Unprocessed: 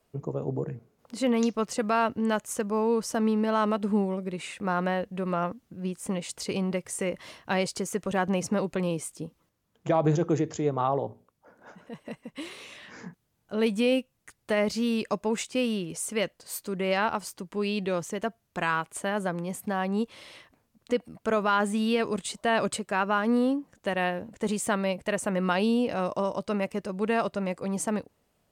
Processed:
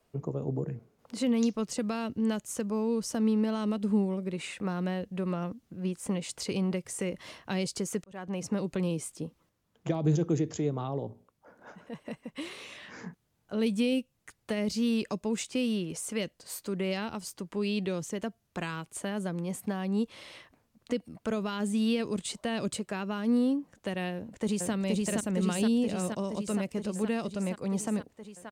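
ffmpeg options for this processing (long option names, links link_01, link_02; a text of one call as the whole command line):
ffmpeg -i in.wav -filter_complex "[0:a]asplit=2[link_01][link_02];[link_02]afade=type=in:start_time=24.13:duration=0.01,afade=type=out:start_time=24.73:duration=0.01,aecho=0:1:470|940|1410|1880|2350|2820|3290|3760|4230|4700|5170|5640:0.944061|0.708046|0.531034|0.398276|0.298707|0.22403|0.168023|0.126017|0.0945127|0.0708845|0.0531634|0.0398725[link_03];[link_01][link_03]amix=inputs=2:normalize=0,asplit=2[link_04][link_05];[link_04]atrim=end=8.04,asetpts=PTS-STARTPTS,afade=type=out:start_time=8.036:duration=0.004:curve=hsin[link_06];[link_05]atrim=start=8.04,asetpts=PTS-STARTPTS,afade=type=in:duration=0.66[link_07];[link_06][link_07]concat=n=2:v=0:a=1,deesser=0.55,highshelf=frequency=11000:gain=-4.5,acrossover=split=380|3000[link_08][link_09][link_10];[link_09]acompressor=threshold=-39dB:ratio=5[link_11];[link_08][link_11][link_10]amix=inputs=3:normalize=0" out.wav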